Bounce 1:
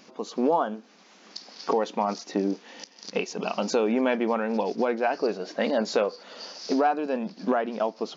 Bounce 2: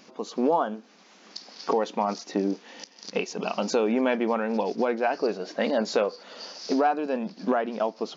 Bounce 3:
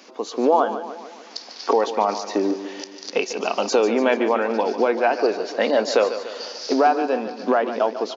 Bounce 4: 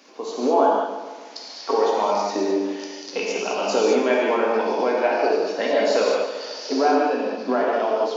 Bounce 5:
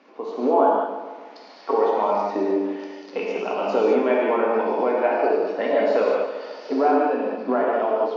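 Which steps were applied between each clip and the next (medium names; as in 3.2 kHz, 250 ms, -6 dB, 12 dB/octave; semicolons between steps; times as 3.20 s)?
no audible change
high-pass 270 Hz 24 dB/octave; on a send: feedback delay 146 ms, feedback 55%, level -11.5 dB; on the sum: trim +6 dB
gated-style reverb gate 240 ms flat, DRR -4 dB; trim -5.5 dB
low-pass 2.1 kHz 12 dB/octave; band-stop 1.6 kHz, Q 26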